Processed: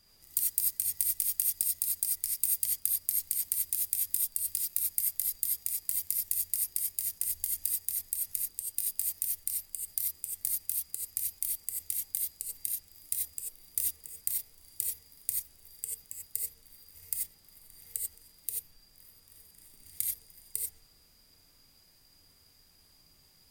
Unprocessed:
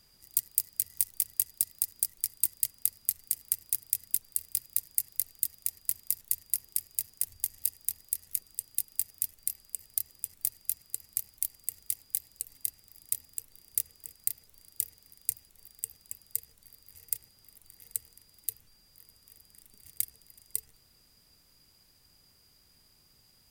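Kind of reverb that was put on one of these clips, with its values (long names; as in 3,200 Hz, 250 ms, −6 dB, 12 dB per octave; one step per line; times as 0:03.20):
reverb whose tail is shaped and stops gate 110 ms rising, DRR −2 dB
level −3 dB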